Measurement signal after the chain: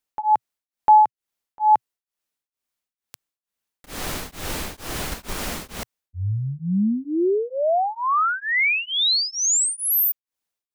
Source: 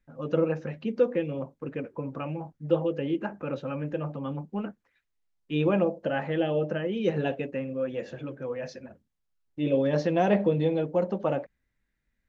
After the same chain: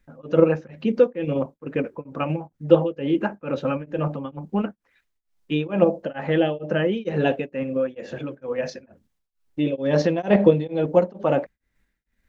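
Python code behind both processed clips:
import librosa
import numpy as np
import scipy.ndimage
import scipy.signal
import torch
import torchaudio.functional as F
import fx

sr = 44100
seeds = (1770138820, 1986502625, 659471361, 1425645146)

p1 = fx.level_steps(x, sr, step_db=11)
p2 = x + (p1 * librosa.db_to_amplitude(2.5))
p3 = fx.peak_eq(p2, sr, hz=120.0, db=-6.5, octaves=0.34)
p4 = p3 * np.abs(np.cos(np.pi * 2.2 * np.arange(len(p3)) / sr))
y = p4 * librosa.db_to_amplitude(4.0)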